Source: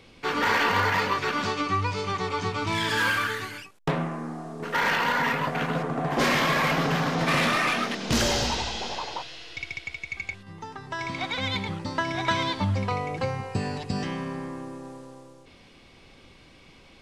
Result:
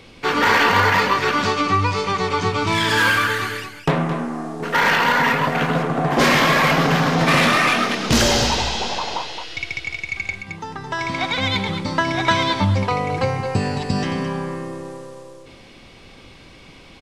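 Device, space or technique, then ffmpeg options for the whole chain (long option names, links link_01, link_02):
ducked delay: -filter_complex "[0:a]asplit=3[link_01][link_02][link_03];[link_02]adelay=218,volume=-7.5dB[link_04];[link_03]apad=whole_len=759771[link_05];[link_04][link_05]sidechaincompress=threshold=-31dB:ratio=8:attack=16:release=132[link_06];[link_01][link_06]amix=inputs=2:normalize=0,volume=7.5dB"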